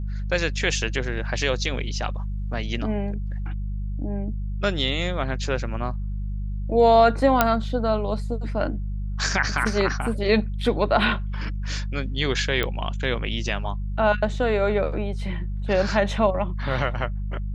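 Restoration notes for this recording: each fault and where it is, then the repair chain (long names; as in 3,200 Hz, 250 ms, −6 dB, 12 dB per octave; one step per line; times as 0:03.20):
mains hum 50 Hz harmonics 4 −28 dBFS
0:07.41: click −2 dBFS
0:12.63: click −11 dBFS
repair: click removal
hum removal 50 Hz, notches 4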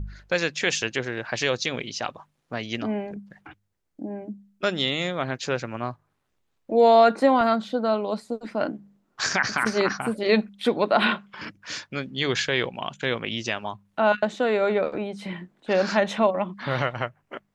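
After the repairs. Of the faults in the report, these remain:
none of them is left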